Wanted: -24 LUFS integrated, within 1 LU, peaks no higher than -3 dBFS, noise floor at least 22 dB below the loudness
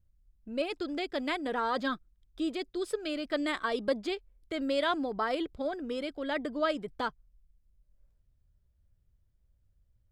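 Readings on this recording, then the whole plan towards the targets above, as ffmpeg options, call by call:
loudness -33.5 LUFS; peak -16.5 dBFS; loudness target -24.0 LUFS
-> -af "volume=9.5dB"

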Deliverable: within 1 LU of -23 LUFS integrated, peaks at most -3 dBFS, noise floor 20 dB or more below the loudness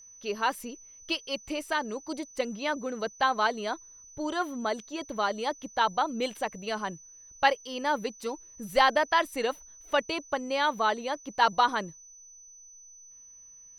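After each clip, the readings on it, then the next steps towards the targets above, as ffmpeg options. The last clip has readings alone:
steady tone 6000 Hz; tone level -49 dBFS; loudness -29.5 LUFS; peak -8.5 dBFS; loudness target -23.0 LUFS
-> -af "bandreject=f=6k:w=30"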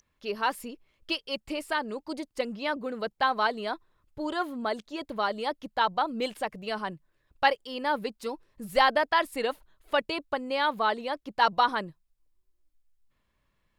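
steady tone none; loudness -29.5 LUFS; peak -8.5 dBFS; loudness target -23.0 LUFS
-> -af "volume=6.5dB,alimiter=limit=-3dB:level=0:latency=1"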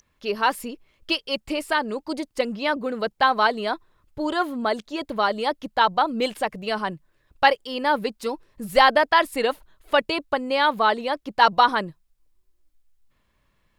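loudness -23.0 LUFS; peak -3.0 dBFS; noise floor -68 dBFS

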